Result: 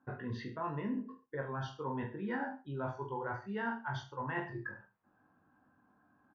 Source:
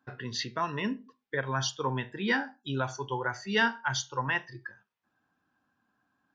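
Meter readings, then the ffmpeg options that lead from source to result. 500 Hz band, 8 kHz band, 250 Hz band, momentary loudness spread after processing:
−6.0 dB, can't be measured, −4.5 dB, 5 LU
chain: -af "lowpass=1200,areverse,acompressor=threshold=-44dB:ratio=5,areverse,aecho=1:1:20|43|69.45|99.87|134.8:0.631|0.398|0.251|0.158|0.1,volume=6dB"

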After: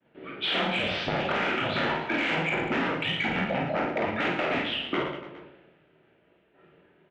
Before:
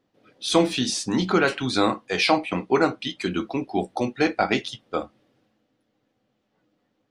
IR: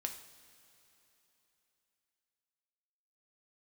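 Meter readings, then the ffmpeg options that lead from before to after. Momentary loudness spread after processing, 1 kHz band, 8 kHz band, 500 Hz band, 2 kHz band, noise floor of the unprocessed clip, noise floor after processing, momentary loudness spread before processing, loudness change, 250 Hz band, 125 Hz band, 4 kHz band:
5 LU, −3.5 dB, below −20 dB, −5.5 dB, +1.0 dB, −73 dBFS, −64 dBFS, 10 LU, −3.5 dB, −7.0 dB, −3.0 dB, −2.0 dB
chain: -filter_complex "[0:a]alimiter=limit=-8.5dB:level=0:latency=1:release=399,aeval=exprs='0.376*sin(PI/2*5.62*val(0)/0.376)':channel_layout=same,agate=range=-33dB:threshold=-46dB:ratio=3:detection=peak,flanger=delay=17.5:depth=7.4:speed=2.8,highpass=frequency=380:width_type=q:width=0.5412,highpass=frequency=380:width_type=q:width=1.307,lowpass=frequency=3100:width_type=q:width=0.5176,lowpass=frequency=3100:width_type=q:width=0.7071,lowpass=frequency=3100:width_type=q:width=1.932,afreqshift=-150,bandreject=frequency=1100:width=6.5,acontrast=85,asplit=2[link_01][link_02];[link_02]adelay=37,volume=-7dB[link_03];[link_01][link_03]amix=inputs=2:normalize=0,acompressor=threshold=-22dB:ratio=6,asplit=2[link_04][link_05];[link_05]aecho=0:1:50|112.5|190.6|288.3|410.4:0.631|0.398|0.251|0.158|0.1[link_06];[link_04][link_06]amix=inputs=2:normalize=0,volume=-5.5dB"

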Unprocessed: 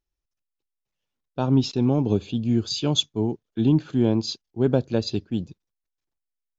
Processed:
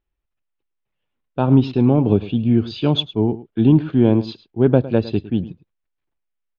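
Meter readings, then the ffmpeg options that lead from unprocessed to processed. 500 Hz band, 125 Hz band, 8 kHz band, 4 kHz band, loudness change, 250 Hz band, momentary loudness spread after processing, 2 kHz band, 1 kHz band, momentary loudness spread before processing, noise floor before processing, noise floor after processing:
+6.0 dB, +6.0 dB, can't be measured, −0.5 dB, +6.0 dB, +6.0 dB, 9 LU, +6.0 dB, +6.0 dB, 9 LU, −85 dBFS, −78 dBFS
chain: -filter_complex "[0:a]lowpass=frequency=3100:width=0.5412,lowpass=frequency=3100:width=1.3066,asplit=2[link_01][link_02];[link_02]aecho=0:1:107:0.15[link_03];[link_01][link_03]amix=inputs=2:normalize=0,volume=6dB"

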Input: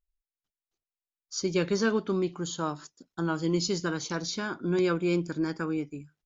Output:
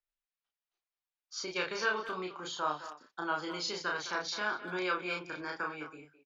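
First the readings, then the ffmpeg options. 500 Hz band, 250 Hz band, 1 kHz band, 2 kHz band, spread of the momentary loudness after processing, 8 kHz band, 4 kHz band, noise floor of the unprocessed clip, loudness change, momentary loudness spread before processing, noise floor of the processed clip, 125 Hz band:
−9.5 dB, −15.0 dB, +1.5 dB, +2.0 dB, 8 LU, can't be measured, −2.0 dB, below −85 dBFS, −6.0 dB, 8 LU, below −85 dBFS, −19.0 dB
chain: -filter_complex "[0:a]acrossover=split=530 4600:gain=0.112 1 0.141[link_01][link_02][link_03];[link_01][link_02][link_03]amix=inputs=3:normalize=0,acrossover=split=130|560|1500[link_04][link_05][link_06][link_07];[link_05]acompressor=threshold=-42dB:ratio=6[link_08];[link_04][link_08][link_06][link_07]amix=inputs=4:normalize=0,asplit=2[link_09][link_10];[link_10]adelay=33,volume=-2dB[link_11];[link_09][link_11]amix=inputs=2:normalize=0,asplit=2[link_12][link_13];[link_13]adelay=210,highpass=300,lowpass=3400,asoftclip=type=hard:threshold=-25.5dB,volume=-12dB[link_14];[link_12][link_14]amix=inputs=2:normalize=0"

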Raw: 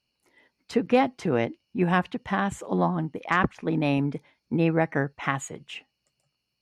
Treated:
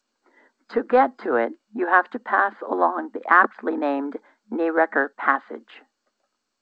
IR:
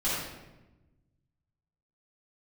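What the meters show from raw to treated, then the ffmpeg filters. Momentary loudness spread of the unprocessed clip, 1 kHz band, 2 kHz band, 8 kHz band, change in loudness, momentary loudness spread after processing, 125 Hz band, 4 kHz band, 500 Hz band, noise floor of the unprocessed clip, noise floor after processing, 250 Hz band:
9 LU, +8.0 dB, +8.5 dB, below −25 dB, +4.5 dB, 12 LU, below −25 dB, can't be measured, +4.0 dB, −80 dBFS, −78 dBFS, −2.0 dB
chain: -filter_complex "[0:a]highshelf=frequency=2000:width_type=q:width=3:gain=-9,acrossover=split=360|3000[link_01][link_02][link_03];[link_01]acompressor=threshold=-34dB:ratio=5[link_04];[link_04][link_02][link_03]amix=inputs=3:normalize=0,afftfilt=real='re*between(b*sr/4096,210,5000)':imag='im*between(b*sr/4096,210,5000)':win_size=4096:overlap=0.75,acrossover=split=310|720|3700[link_05][link_06][link_07][link_08];[link_05]asoftclip=type=tanh:threshold=-33dB[link_09];[link_09][link_06][link_07][link_08]amix=inputs=4:normalize=0,volume=5.5dB" -ar 16000 -c:a g722

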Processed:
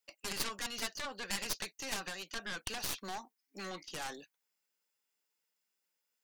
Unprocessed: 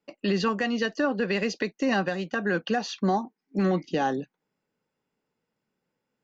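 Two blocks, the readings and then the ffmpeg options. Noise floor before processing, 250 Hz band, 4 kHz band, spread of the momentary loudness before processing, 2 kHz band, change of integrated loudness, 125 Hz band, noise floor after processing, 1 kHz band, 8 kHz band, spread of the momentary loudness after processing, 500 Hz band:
−84 dBFS, −23.0 dB, −3.5 dB, 4 LU, −11.0 dB, −12.5 dB, −21.0 dB, −85 dBFS, −14.5 dB, can't be measured, 8 LU, −20.5 dB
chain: -af "aderivative,aeval=exprs='0.0501*(cos(1*acos(clip(val(0)/0.0501,-1,1)))-cos(1*PI/2))+0.00891*(cos(3*acos(clip(val(0)/0.0501,-1,1)))-cos(3*PI/2))+0.0141*(cos(4*acos(clip(val(0)/0.0501,-1,1)))-cos(4*PI/2))+0.0141*(cos(7*acos(clip(val(0)/0.0501,-1,1)))-cos(7*PI/2))':channel_layout=same,volume=3dB"

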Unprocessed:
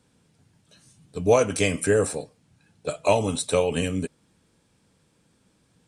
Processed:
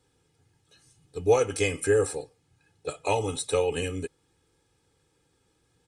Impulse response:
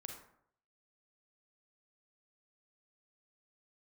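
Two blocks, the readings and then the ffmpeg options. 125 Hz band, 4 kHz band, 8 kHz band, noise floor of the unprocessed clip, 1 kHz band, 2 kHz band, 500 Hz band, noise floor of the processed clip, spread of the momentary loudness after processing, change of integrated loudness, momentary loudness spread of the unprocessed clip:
−4.5 dB, −3.5 dB, −4.0 dB, −66 dBFS, −3.0 dB, −3.0 dB, −2.5 dB, −71 dBFS, 15 LU, −3.0 dB, 15 LU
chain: -af "aecho=1:1:2.4:0.72,volume=-5.5dB"

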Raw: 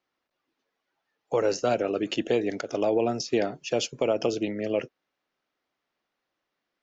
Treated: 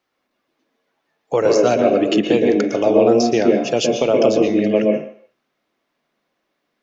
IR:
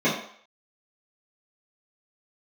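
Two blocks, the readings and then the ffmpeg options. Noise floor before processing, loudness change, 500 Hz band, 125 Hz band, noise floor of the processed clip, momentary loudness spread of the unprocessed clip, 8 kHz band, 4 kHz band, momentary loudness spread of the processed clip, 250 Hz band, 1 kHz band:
−83 dBFS, +11.0 dB, +11.5 dB, +10.0 dB, −74 dBFS, 5 LU, can't be measured, +8.0 dB, 5 LU, +13.0 dB, +9.5 dB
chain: -filter_complex "[0:a]asplit=2[link_01][link_02];[1:a]atrim=start_sample=2205,adelay=115[link_03];[link_02][link_03]afir=irnorm=-1:irlink=0,volume=-18.5dB[link_04];[link_01][link_04]amix=inputs=2:normalize=0,volume=7dB"

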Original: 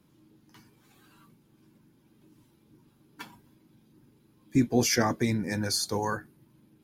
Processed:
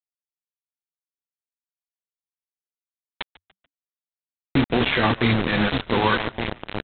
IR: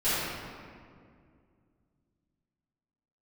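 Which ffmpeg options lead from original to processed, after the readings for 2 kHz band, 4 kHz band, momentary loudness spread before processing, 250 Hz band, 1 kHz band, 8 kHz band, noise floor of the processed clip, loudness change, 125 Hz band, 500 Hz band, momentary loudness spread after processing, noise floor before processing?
+11.5 dB, +6.5 dB, 9 LU, +5.0 dB, +9.0 dB, below −40 dB, below −85 dBFS, +5.5 dB, +6.5 dB, +6.5 dB, 18 LU, −64 dBFS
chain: -filter_complex "[0:a]bandreject=frequency=50:width_type=h:width=6,bandreject=frequency=100:width_type=h:width=6,alimiter=limit=-20dB:level=0:latency=1:release=13,crystalizer=i=4:c=0,flanger=delay=8.6:depth=5.9:regen=56:speed=0.97:shape=sinusoidal,asplit=2[link_01][link_02];[link_02]adelay=1166,volume=-7dB,highshelf=frequency=4000:gain=-26.2[link_03];[link_01][link_03]amix=inputs=2:normalize=0,tremolo=f=200:d=0.462,aresample=8000,acrusher=bits=5:mix=0:aa=0.000001,aresample=44100,acontrast=77,asplit=2[link_04][link_05];[link_05]asplit=3[link_06][link_07][link_08];[link_06]adelay=145,afreqshift=-99,volume=-21dB[link_09];[link_07]adelay=290,afreqshift=-198,volume=-28.3dB[link_10];[link_08]adelay=435,afreqshift=-297,volume=-35.7dB[link_11];[link_09][link_10][link_11]amix=inputs=3:normalize=0[link_12];[link_04][link_12]amix=inputs=2:normalize=0,volume=7dB"

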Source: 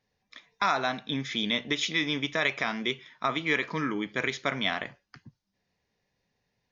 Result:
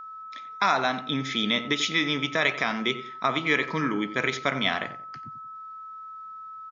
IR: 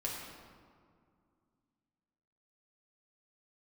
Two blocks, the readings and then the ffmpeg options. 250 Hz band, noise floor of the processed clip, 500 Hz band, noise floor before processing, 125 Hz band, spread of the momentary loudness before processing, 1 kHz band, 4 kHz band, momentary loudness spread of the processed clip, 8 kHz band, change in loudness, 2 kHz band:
+3.5 dB, −41 dBFS, +3.0 dB, −80 dBFS, +3.0 dB, 5 LU, +4.5 dB, +3.0 dB, 17 LU, can't be measured, +3.5 dB, +3.0 dB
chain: -filter_complex "[0:a]highpass=61,asplit=2[link_01][link_02];[link_02]adelay=90,lowpass=frequency=1600:poles=1,volume=-11dB,asplit=2[link_03][link_04];[link_04]adelay=90,lowpass=frequency=1600:poles=1,volume=0.31,asplit=2[link_05][link_06];[link_06]adelay=90,lowpass=frequency=1600:poles=1,volume=0.31[link_07];[link_01][link_03][link_05][link_07]amix=inputs=4:normalize=0,aeval=exprs='val(0)+0.00891*sin(2*PI*1300*n/s)':channel_layout=same,volume=3dB"

